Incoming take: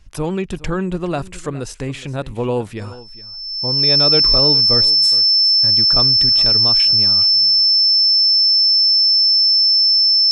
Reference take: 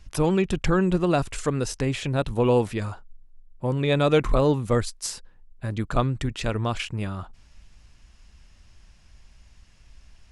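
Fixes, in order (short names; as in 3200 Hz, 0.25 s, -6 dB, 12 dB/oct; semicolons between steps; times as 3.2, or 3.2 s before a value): notch 5300 Hz, Q 30; inverse comb 0.416 s -18 dB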